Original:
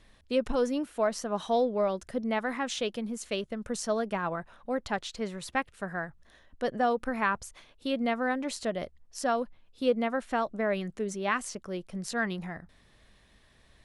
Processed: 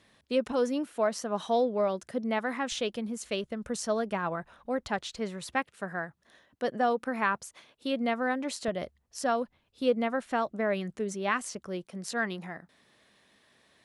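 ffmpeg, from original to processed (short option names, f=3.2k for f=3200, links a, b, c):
-af "asetnsamples=n=441:p=0,asendcmd='2.72 highpass f 41;5.55 highpass f 150;8.68 highpass f 63;11.86 highpass f 200',highpass=120"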